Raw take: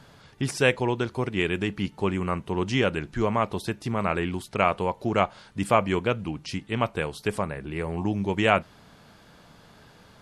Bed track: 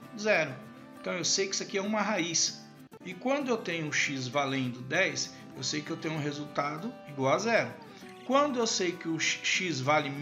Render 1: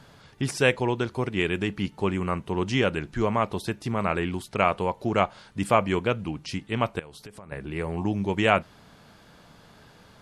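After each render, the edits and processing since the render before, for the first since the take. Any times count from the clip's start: 6.99–7.52 compressor, threshold -41 dBFS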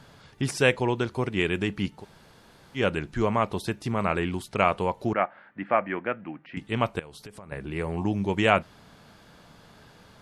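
2–2.79 room tone, crossfade 0.10 s; 5.13–6.57 speaker cabinet 300–2100 Hz, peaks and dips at 430 Hz -10 dB, 1000 Hz -6 dB, 1800 Hz +5 dB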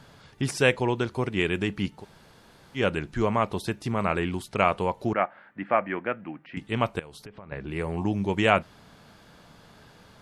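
7.24–7.67 LPF 2600 Hz -> 6500 Hz 24 dB/oct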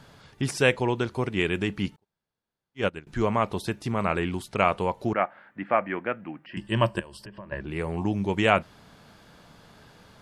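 1.96–3.07 upward expander 2.5:1, over -44 dBFS; 6.46–7.61 ripple EQ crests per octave 1.3, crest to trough 12 dB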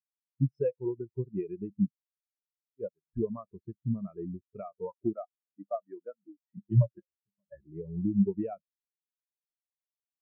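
compressor 8:1, threshold -25 dBFS, peak gain reduction 11 dB; spectral expander 4:1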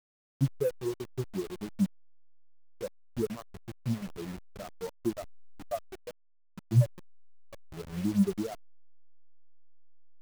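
level-crossing sampler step -37.5 dBFS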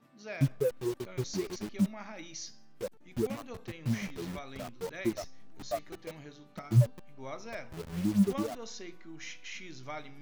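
add bed track -15.5 dB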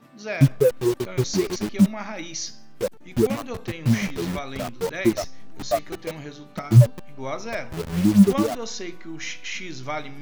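gain +11.5 dB; limiter -3 dBFS, peak gain reduction 1.5 dB

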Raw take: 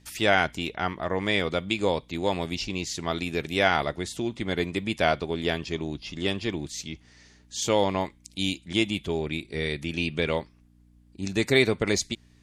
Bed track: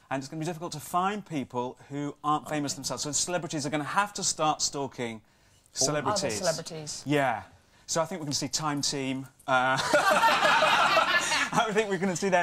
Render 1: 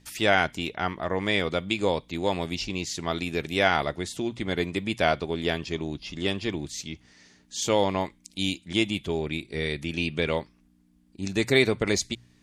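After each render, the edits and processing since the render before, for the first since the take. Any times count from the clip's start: de-hum 60 Hz, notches 2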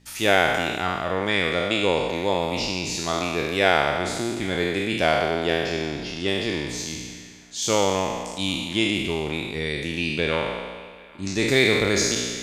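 spectral trails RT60 1.66 s; band-limited delay 0.795 s, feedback 36%, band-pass 1500 Hz, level -22 dB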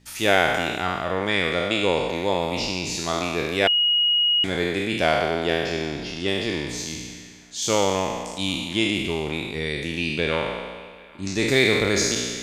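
3.67–4.44 bleep 2890 Hz -16.5 dBFS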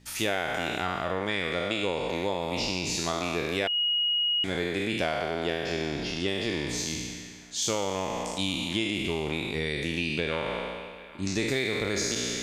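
compressor, threshold -25 dBFS, peak gain reduction 11.5 dB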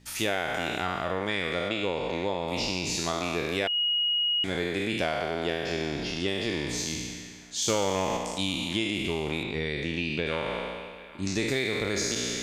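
1.69–2.48 air absorption 68 m; 7.68–8.17 sample leveller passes 1; 9.43–10.26 air absorption 87 m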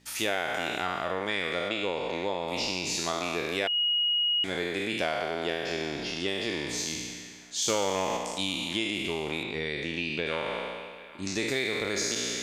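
low shelf 180 Hz -10 dB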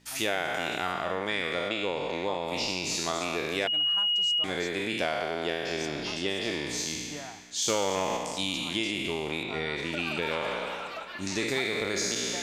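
add bed track -17 dB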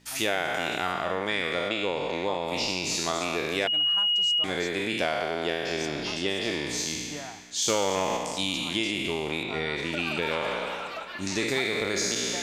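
gain +2 dB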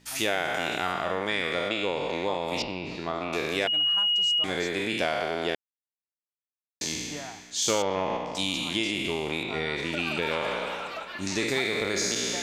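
2.62–3.33 air absorption 430 m; 5.55–6.81 mute; 7.82–8.35 air absorption 290 m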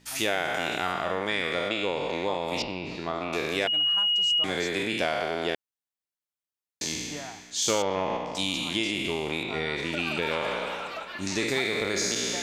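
4.3–4.83 three-band squash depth 40%

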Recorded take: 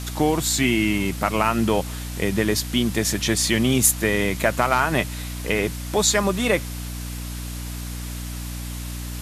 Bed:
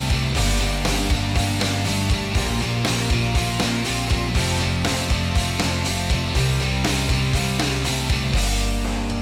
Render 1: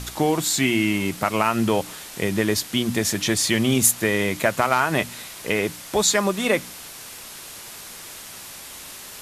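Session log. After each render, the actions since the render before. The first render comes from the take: de-hum 60 Hz, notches 5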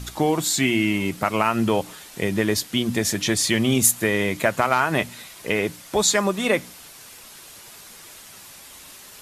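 denoiser 6 dB, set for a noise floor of -39 dBFS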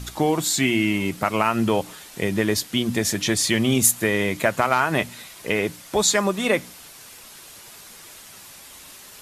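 nothing audible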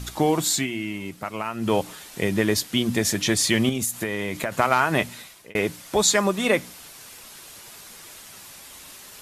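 0.54–1.73 dip -9 dB, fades 0.13 s; 3.69–4.52 compressor, threshold -22 dBFS; 5.15–5.55 fade out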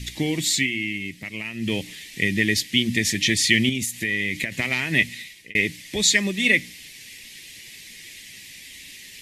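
EQ curve 280 Hz 0 dB, 710 Hz -16 dB, 1400 Hz -21 dB, 1900 Hz +9 dB, 14000 Hz -5 dB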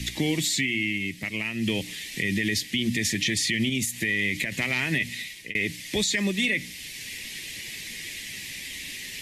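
limiter -14.5 dBFS, peak gain reduction 11.5 dB; three-band squash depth 40%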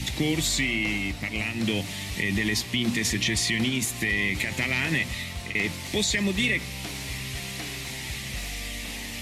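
add bed -16 dB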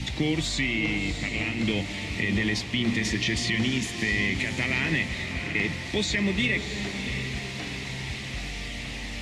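air absorption 88 m; diffused feedback echo 0.679 s, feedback 49%, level -8 dB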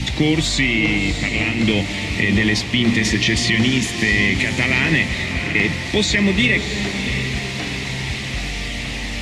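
gain +9 dB

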